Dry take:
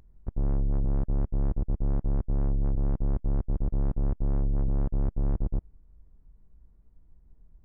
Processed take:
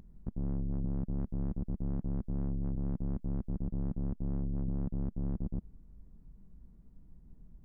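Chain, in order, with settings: peak limiter -33.5 dBFS, peak gain reduction 11.5 dB; peaking EQ 200 Hz +11.5 dB 1.2 oct; 1.19–3.57 s: tape noise reduction on one side only encoder only

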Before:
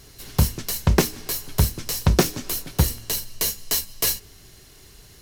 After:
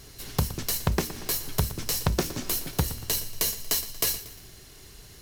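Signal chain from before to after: compression 5:1, threshold -22 dBFS, peak gain reduction 10.5 dB; bit-crushed delay 117 ms, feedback 55%, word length 7-bit, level -14.5 dB

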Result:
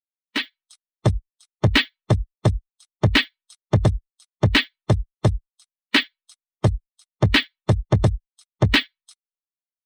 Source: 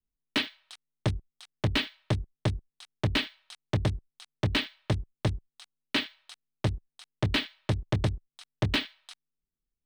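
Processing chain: expander on every frequency bin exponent 2; dynamic bell 1.9 kHz, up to +5 dB, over -50 dBFS, Q 4.3; level rider gain up to 12 dB

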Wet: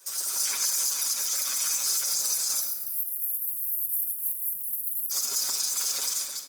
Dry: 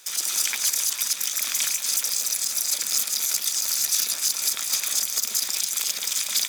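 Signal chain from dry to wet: fade out at the end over 0.64 s; 2.60–5.11 s: inverse Chebyshev band-stop 370–6200 Hz, stop band 50 dB; comb 7.2 ms, depth 95%; level rider gain up to 6 dB; high-pass 210 Hz 12 dB/octave; simulated room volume 1800 m³, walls mixed, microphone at 1.1 m; peak limiter -11 dBFS, peak gain reduction 8 dB; high-order bell 2.6 kHz -8.5 dB 1.3 oct; trim -4.5 dB; Opus 24 kbps 48 kHz

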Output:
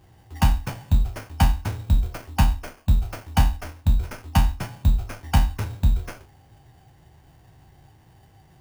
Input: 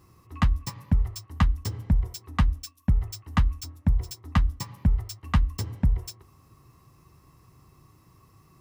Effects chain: spectral sustain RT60 0.33 s; sample-rate reducer 5.4 kHz, jitter 0%; formant shift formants -6 st; trim +2.5 dB

